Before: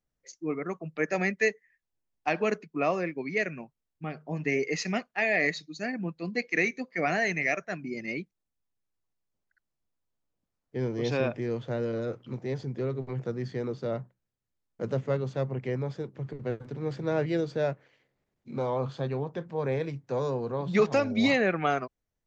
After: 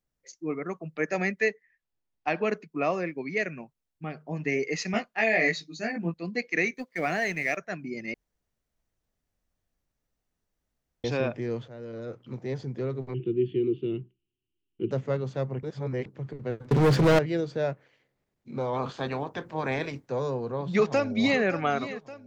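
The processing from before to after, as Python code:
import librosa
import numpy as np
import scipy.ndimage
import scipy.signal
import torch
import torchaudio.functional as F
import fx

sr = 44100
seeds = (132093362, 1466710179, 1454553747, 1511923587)

y = fx.lowpass(x, sr, hz=4900.0, slope=12, at=(1.41, 2.57))
y = fx.doubler(y, sr, ms=18.0, db=-2.0, at=(4.92, 6.14))
y = fx.law_mismatch(y, sr, coded='A', at=(6.74, 7.57))
y = fx.curve_eq(y, sr, hz=(240.0, 370.0, 550.0, 920.0, 1900.0, 2900.0, 4900.0), db=(0, 14, -24, -19, -15, 14, -30), at=(13.14, 14.91))
y = fx.leveller(y, sr, passes=5, at=(16.71, 17.19))
y = fx.spec_clip(y, sr, under_db=16, at=(18.73, 20.07), fade=0.02)
y = fx.echo_throw(y, sr, start_s=20.62, length_s=0.79, ms=570, feedback_pct=55, wet_db=-13.5)
y = fx.edit(y, sr, fx.room_tone_fill(start_s=8.14, length_s=2.9),
    fx.fade_in_from(start_s=11.68, length_s=0.78, floor_db=-15.5),
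    fx.reverse_span(start_s=15.63, length_s=0.43), tone=tone)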